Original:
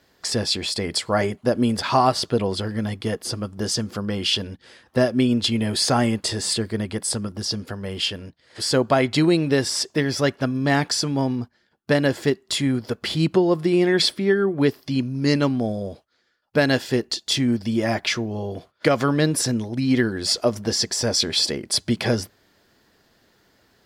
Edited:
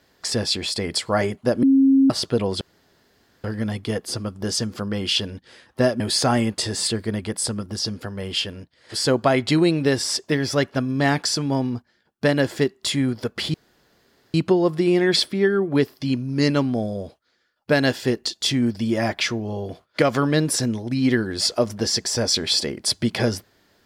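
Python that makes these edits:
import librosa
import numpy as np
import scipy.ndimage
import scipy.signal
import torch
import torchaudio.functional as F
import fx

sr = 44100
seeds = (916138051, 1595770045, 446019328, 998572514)

y = fx.edit(x, sr, fx.bleep(start_s=1.63, length_s=0.47, hz=270.0, db=-11.5),
    fx.insert_room_tone(at_s=2.61, length_s=0.83),
    fx.cut(start_s=5.17, length_s=0.49),
    fx.insert_room_tone(at_s=13.2, length_s=0.8), tone=tone)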